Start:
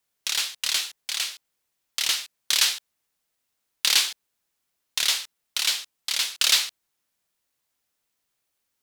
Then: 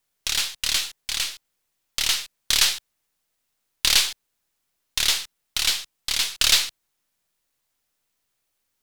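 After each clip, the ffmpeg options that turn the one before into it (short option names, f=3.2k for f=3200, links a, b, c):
-af "aeval=exprs='if(lt(val(0),0),0.708*val(0),val(0))':c=same,lowshelf=f=80:g=5.5,volume=3dB"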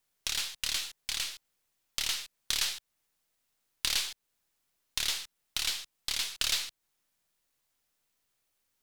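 -af "acompressor=threshold=-31dB:ratio=2,volume=-2.5dB"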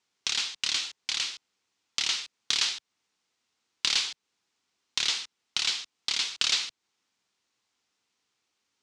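-af "highpass=130,equalizer=f=150:t=q:w=4:g=-7,equalizer=f=600:t=q:w=4:g=-8,equalizer=f=1.7k:t=q:w=4:g=-3,lowpass=f=6.8k:w=0.5412,lowpass=f=6.8k:w=1.3066,volume=5dB"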